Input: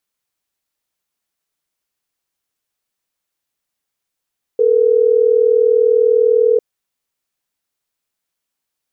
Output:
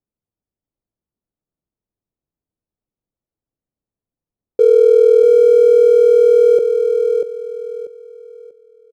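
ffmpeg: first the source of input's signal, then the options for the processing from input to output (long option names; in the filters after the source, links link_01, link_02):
-f lavfi -i "aevalsrc='0.251*(sin(2*PI*440*t)+sin(2*PI*480*t))*clip(min(mod(t,6),2-mod(t,6))/0.005,0,1)':duration=3.12:sample_rate=44100"
-filter_complex "[0:a]lowshelf=frequency=410:gain=6.5,adynamicsmooth=sensitivity=7.5:basefreq=570,asplit=2[link_01][link_02];[link_02]aecho=0:1:640|1280|1920|2560:0.531|0.149|0.0416|0.0117[link_03];[link_01][link_03]amix=inputs=2:normalize=0"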